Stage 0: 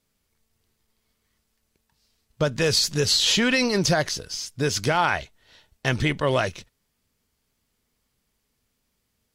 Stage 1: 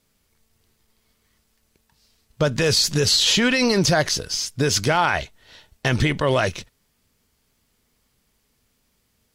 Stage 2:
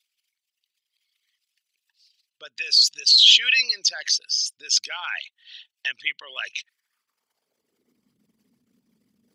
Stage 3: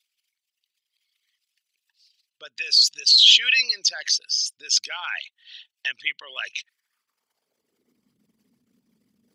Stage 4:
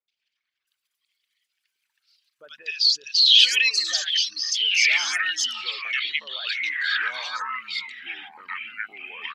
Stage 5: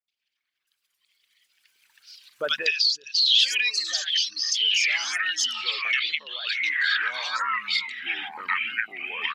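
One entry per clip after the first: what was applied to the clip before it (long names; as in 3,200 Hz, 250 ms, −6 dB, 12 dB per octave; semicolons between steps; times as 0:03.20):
brickwall limiter −15.5 dBFS, peak gain reduction 7 dB; level +6.5 dB
spectral envelope exaggerated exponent 2; high-pass filter sweep 2,800 Hz → 220 Hz, 0:06.50–0:08.07
no processing that can be heard
three-band delay without the direct sound lows, mids, highs 80/670 ms, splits 1,300/5,600 Hz; delay with pitch and tempo change per echo 101 ms, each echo −6 semitones, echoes 2, each echo −6 dB
camcorder AGC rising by 10 dB per second; wow of a warped record 45 rpm, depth 100 cents; level −4.5 dB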